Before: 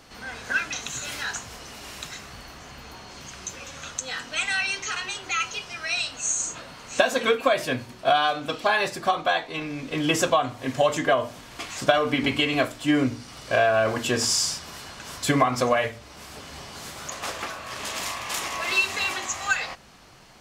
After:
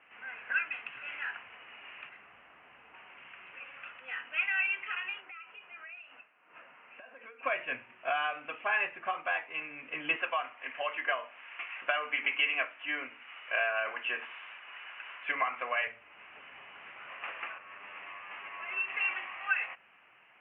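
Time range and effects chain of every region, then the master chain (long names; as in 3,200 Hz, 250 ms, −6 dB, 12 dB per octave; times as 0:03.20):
0:02.09–0:02.94: linear delta modulator 64 kbit/s, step −37 dBFS + parametric band 2,400 Hz −7.5 dB 2 octaves
0:05.20–0:07.43: high-pass filter 150 Hz + downward compressor 10 to 1, threshold −33 dBFS + head-to-tape spacing loss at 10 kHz 26 dB
0:10.16–0:15.87: meter weighting curve A + one half of a high-frequency compander encoder only
0:17.58–0:18.88: lower of the sound and its delayed copy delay 10 ms + head-to-tape spacing loss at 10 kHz 21 dB
whole clip: Butterworth low-pass 2,800 Hz 96 dB per octave; first difference; level +7 dB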